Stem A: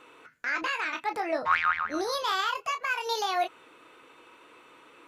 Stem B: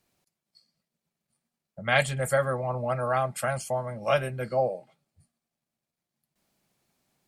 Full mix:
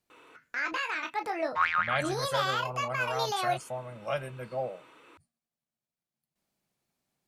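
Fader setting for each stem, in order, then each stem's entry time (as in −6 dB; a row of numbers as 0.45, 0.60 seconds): −2.0, −8.0 decibels; 0.10, 0.00 seconds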